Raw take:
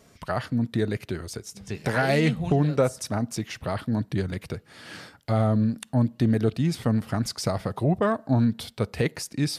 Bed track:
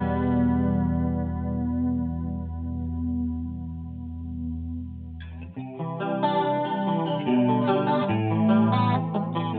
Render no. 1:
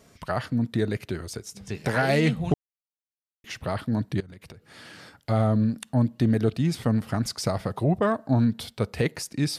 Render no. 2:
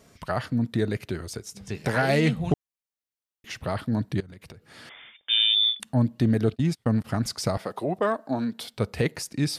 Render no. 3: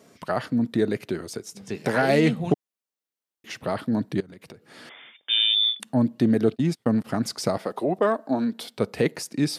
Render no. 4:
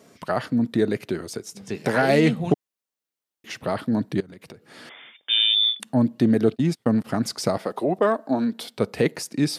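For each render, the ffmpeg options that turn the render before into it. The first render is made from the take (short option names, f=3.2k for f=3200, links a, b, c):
-filter_complex "[0:a]asettb=1/sr,asplit=3[a][b][c];[a]atrim=end=4.204[d];[b]atrim=start=4.2:end=5.15,asetpts=PTS-STARTPTS,afade=t=in:d=0.004:c=qsin,afade=t=out:st=0.946:d=0.004:c=qsin,acompressor=threshold=-41dB:ratio=10:attack=3.2:release=140:knee=1:detection=peak[e];[c]atrim=start=5.146[f];[d][e]acrossfade=d=0.004:c1=hsin:c2=qsin[g];[g][f]acrossfade=d=0.004:c1=qsin:c2=hsin,asplit=3[h][i][j];[h]atrim=end=2.54,asetpts=PTS-STARTPTS,afade=t=out:st=2.536:d=0.004:c=hsin[k];[i]atrim=start=2.54:end=3.44,asetpts=PTS-STARTPTS,volume=0[l];[j]atrim=start=3.44,asetpts=PTS-STARTPTS,afade=t=in:d=0.004:c=hsin[m];[k][l][m]concat=n=3:v=0:a=1"
-filter_complex "[0:a]asettb=1/sr,asplit=3[a][b][c];[a]atrim=end=4.894[d];[b]atrim=start=4.89:end=5.8,asetpts=PTS-STARTPTS,afade=t=in:d=0.004:c=qsin,afade=t=out:st=0.906:d=0.004:c=qsin,lowpass=f=3.1k:t=q:w=0.5098,lowpass=f=3.1k:t=q:w=0.6013,lowpass=f=3.1k:t=q:w=0.9,lowpass=f=3.1k:t=q:w=2.563,afreqshift=-3700[e];[c]atrim=start=5.796[f];[d][e]acrossfade=d=0.004:c1=hsin:c2=qsin[g];[g][f]acrossfade=d=0.004:c1=qsin:c2=hsin,asplit=3[h][i][j];[h]afade=t=out:st=6.54:d=0.02[k];[i]agate=range=-33dB:threshold=-29dB:ratio=16:release=100:detection=peak,afade=t=in:st=6.54:d=0.02,afade=t=out:st=7.04:d=0.02[l];[j]afade=t=in:st=7.04:d=0.02[m];[k][l][m]amix=inputs=3:normalize=0,asettb=1/sr,asplit=3[n][o][p];[n]atrim=end=7.574[q];[o]atrim=start=7.57:end=8.74,asetpts=PTS-STARTPTS,afade=t=in:d=0.004:c=qsin,afade=t=out:st=1.166:d=0.004:c=qsin,highpass=290[r];[p]atrim=start=8.736[s];[q][r]acrossfade=d=0.004:c1=hsin:c2=qsin[t];[t][s]acrossfade=d=0.004:c1=qsin:c2=hsin"
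-af "highpass=250,lowshelf=f=470:g=8.5"
-af "volume=1.5dB"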